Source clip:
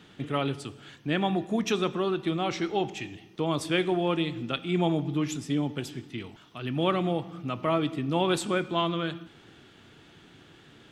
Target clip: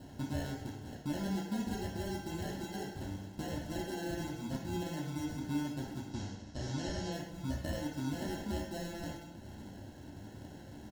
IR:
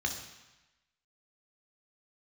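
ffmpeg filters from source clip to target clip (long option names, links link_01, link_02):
-filter_complex "[0:a]acompressor=threshold=-43dB:ratio=3,acrusher=samples=37:mix=1:aa=0.000001,asplit=3[link_01][link_02][link_03];[link_01]afade=type=out:start_time=6.08:duration=0.02[link_04];[link_02]lowpass=frequency=5900:width_type=q:width=2.2,afade=type=in:start_time=6.08:duration=0.02,afade=type=out:start_time=7.11:duration=0.02[link_05];[link_03]afade=type=in:start_time=7.11:duration=0.02[link_06];[link_04][link_05][link_06]amix=inputs=3:normalize=0,asplit=2[link_07][link_08];[link_08]adelay=210,highpass=300,lowpass=3400,asoftclip=type=hard:threshold=-34.5dB,volume=-14dB[link_09];[link_07][link_09]amix=inputs=2:normalize=0,asplit=2[link_10][link_11];[1:a]atrim=start_sample=2205,atrim=end_sample=6174[link_12];[link_11][link_12]afir=irnorm=-1:irlink=0,volume=-4dB[link_13];[link_10][link_13]amix=inputs=2:normalize=0,volume=2.5dB"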